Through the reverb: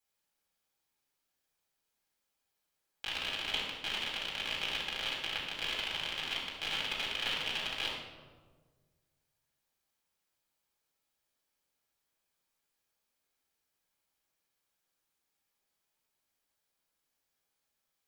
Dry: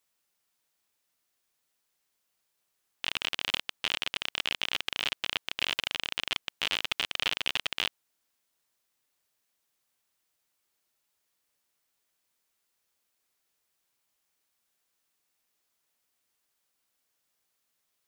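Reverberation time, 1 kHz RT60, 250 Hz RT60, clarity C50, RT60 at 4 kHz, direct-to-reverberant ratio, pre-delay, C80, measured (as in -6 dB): 1.5 s, 1.3 s, 1.9 s, 1.5 dB, 0.85 s, -5.0 dB, 4 ms, 4.5 dB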